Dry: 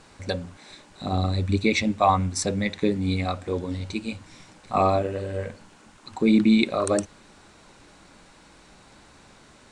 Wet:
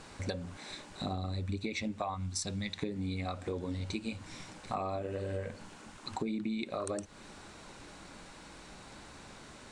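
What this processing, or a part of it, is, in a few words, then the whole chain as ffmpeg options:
serial compression, leveller first: -filter_complex "[0:a]asettb=1/sr,asplit=3[link_01][link_02][link_03];[link_01]atrim=end=2.144[link_04];[link_02]atrim=start=2.14:end=2.78,asetpts=PTS-STARTPTS,afade=type=in:duration=0.004:curve=qsin,afade=type=out:start_time=0.636:duration=0.004:curve=qsin,equalizer=frequency=250:width_type=o:width=1:gain=-4,equalizer=frequency=500:width_type=o:width=1:gain=-11,equalizer=frequency=2000:width_type=o:width=1:gain=-5,equalizer=frequency=4000:width_type=o:width=1:gain=4[link_05];[link_03]atrim=start=2.776[link_06];[link_04][link_05]acrossfade=duration=0.004:curve1=hsin:curve2=qsin[link_07];[link_07][link_06]acrossfade=duration=0.004:curve1=qsin:curve2=hsin,acompressor=threshold=-23dB:ratio=2.5,acompressor=threshold=-35dB:ratio=5,volume=1dB"

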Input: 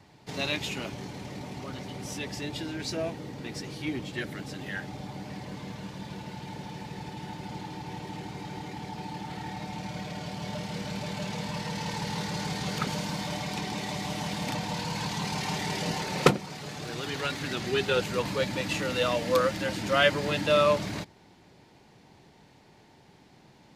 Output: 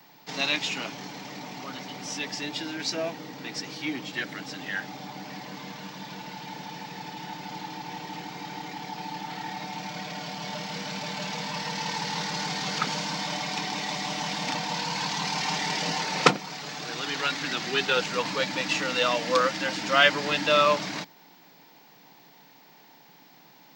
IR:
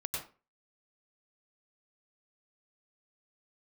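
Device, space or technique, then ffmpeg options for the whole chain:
old television with a line whistle: -af "highpass=frequency=190:width=0.5412,highpass=frequency=190:width=1.3066,equalizer=frequency=220:width_type=q:width=4:gain=-9,equalizer=frequency=380:width_type=q:width=4:gain=-10,equalizer=frequency=560:width_type=q:width=4:gain=-6,equalizer=frequency=5400:width_type=q:width=4:gain=3,lowpass=frequency=7100:width=0.5412,lowpass=frequency=7100:width=1.3066,aeval=exprs='val(0)+0.000794*sin(2*PI*15734*n/s)':channel_layout=same,volume=5dB"

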